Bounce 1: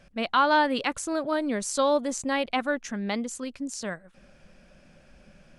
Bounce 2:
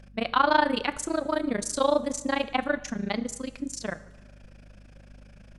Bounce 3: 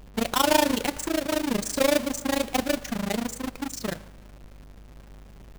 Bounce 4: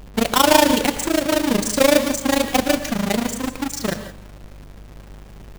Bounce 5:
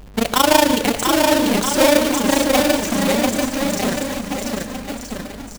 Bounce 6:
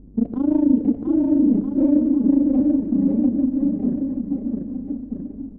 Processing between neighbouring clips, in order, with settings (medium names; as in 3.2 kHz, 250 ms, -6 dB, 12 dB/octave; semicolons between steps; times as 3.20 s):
AM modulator 27 Hz, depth 95%; plate-style reverb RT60 1.1 s, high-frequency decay 0.8×, DRR 14 dB; hum 50 Hz, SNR 22 dB; trim +3.5 dB
square wave that keeps the level; dynamic bell 1.3 kHz, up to -5 dB, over -32 dBFS, Q 1.2; trim -2 dB
gated-style reverb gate 190 ms rising, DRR 11 dB; trim +7 dB
bouncing-ball echo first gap 690 ms, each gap 0.85×, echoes 5
resonant low-pass 280 Hz, resonance Q 3.4; trim -6 dB